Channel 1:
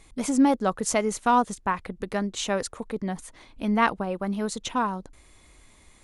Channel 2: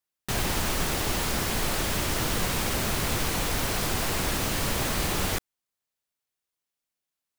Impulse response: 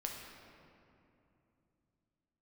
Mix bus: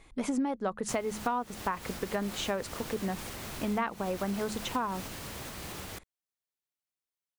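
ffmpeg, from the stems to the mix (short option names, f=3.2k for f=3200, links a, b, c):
-filter_complex "[0:a]bass=f=250:g=-3,treble=f=4k:g=-9,bandreject=f=70.69:t=h:w=4,bandreject=f=141.38:t=h:w=4,bandreject=f=212.07:t=h:w=4,volume=-0.5dB,asplit=2[a][b];[1:a]highpass=48,alimiter=limit=-22.5dB:level=0:latency=1:release=347,adelay=600,volume=-8.5dB[c];[b]apad=whole_len=352017[d];[c][d]sidechaincompress=threshold=-26dB:ratio=4:attack=5.3:release=239[e];[a][e]amix=inputs=2:normalize=0,acompressor=threshold=-27dB:ratio=12"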